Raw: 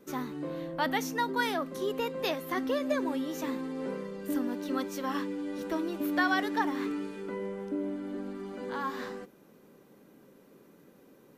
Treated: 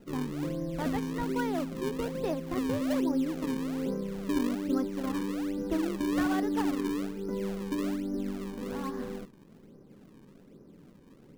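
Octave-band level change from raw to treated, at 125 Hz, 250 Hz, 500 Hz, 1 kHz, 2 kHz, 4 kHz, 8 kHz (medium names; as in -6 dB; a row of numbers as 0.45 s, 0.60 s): +8.0 dB, +3.5 dB, -0.5 dB, -5.0 dB, -7.5 dB, -5.0 dB, -0.5 dB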